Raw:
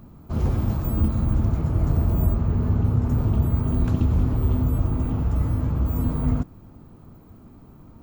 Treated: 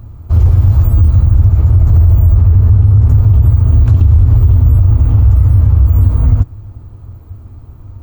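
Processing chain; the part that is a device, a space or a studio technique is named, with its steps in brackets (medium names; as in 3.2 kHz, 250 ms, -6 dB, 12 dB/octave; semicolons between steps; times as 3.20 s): car stereo with a boomy subwoofer (resonant low shelf 130 Hz +9.5 dB, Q 3; peak limiter -6.5 dBFS, peak gain reduction 10 dB); trim +5.5 dB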